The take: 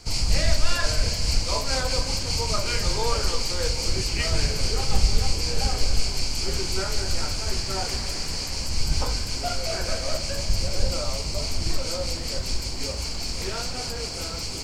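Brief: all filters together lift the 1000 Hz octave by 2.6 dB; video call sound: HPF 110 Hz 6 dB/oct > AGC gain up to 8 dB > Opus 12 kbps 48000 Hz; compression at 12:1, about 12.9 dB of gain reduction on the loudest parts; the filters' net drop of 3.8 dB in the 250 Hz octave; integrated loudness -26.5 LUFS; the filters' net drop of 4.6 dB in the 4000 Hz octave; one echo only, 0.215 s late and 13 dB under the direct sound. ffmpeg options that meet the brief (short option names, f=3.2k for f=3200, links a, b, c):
-af "equalizer=f=250:t=o:g=-4.5,equalizer=f=1k:t=o:g=4,equalizer=f=4k:t=o:g=-6,acompressor=threshold=-25dB:ratio=12,highpass=f=110:p=1,aecho=1:1:215:0.224,dynaudnorm=m=8dB,volume=8dB" -ar 48000 -c:a libopus -b:a 12k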